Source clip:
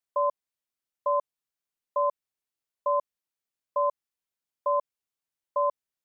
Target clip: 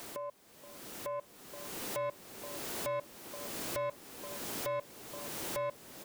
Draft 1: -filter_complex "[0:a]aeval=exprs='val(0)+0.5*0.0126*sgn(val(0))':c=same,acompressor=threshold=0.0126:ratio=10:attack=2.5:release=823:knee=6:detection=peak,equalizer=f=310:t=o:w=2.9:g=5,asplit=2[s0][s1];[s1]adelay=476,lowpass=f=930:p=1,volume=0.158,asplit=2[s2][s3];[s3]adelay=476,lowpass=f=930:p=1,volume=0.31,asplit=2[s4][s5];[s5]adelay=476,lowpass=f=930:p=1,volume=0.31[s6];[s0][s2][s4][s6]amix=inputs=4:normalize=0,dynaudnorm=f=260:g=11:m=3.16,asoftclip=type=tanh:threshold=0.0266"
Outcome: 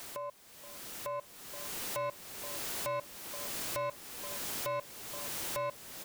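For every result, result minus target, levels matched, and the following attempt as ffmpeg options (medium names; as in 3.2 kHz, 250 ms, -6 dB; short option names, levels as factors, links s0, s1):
compression: peak gain reduction -6 dB; 250 Hz band -5.5 dB
-filter_complex "[0:a]aeval=exprs='val(0)+0.5*0.0126*sgn(val(0))':c=same,acompressor=threshold=0.00596:ratio=10:attack=2.5:release=823:knee=6:detection=peak,equalizer=f=310:t=o:w=2.9:g=5,asplit=2[s0][s1];[s1]adelay=476,lowpass=f=930:p=1,volume=0.158,asplit=2[s2][s3];[s3]adelay=476,lowpass=f=930:p=1,volume=0.31,asplit=2[s4][s5];[s5]adelay=476,lowpass=f=930:p=1,volume=0.31[s6];[s0][s2][s4][s6]amix=inputs=4:normalize=0,dynaudnorm=f=260:g=11:m=3.16,asoftclip=type=tanh:threshold=0.0266"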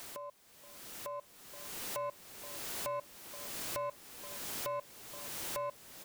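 250 Hz band -6.0 dB
-filter_complex "[0:a]aeval=exprs='val(0)+0.5*0.0126*sgn(val(0))':c=same,acompressor=threshold=0.00596:ratio=10:attack=2.5:release=823:knee=6:detection=peak,equalizer=f=310:t=o:w=2.9:g=13.5,asplit=2[s0][s1];[s1]adelay=476,lowpass=f=930:p=1,volume=0.158,asplit=2[s2][s3];[s3]adelay=476,lowpass=f=930:p=1,volume=0.31,asplit=2[s4][s5];[s5]adelay=476,lowpass=f=930:p=1,volume=0.31[s6];[s0][s2][s4][s6]amix=inputs=4:normalize=0,dynaudnorm=f=260:g=11:m=3.16,asoftclip=type=tanh:threshold=0.0266"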